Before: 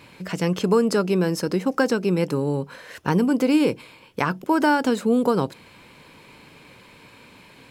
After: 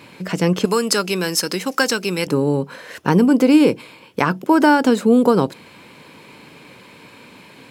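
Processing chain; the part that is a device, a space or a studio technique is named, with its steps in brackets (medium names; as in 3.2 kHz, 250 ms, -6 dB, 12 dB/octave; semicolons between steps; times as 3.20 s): filter by subtraction (in parallel: low-pass 220 Hz 12 dB/octave + polarity flip); 0.65–2.27 s: on the sum: tilt shelf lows -9.5 dB, about 1.2 kHz; trim +4.5 dB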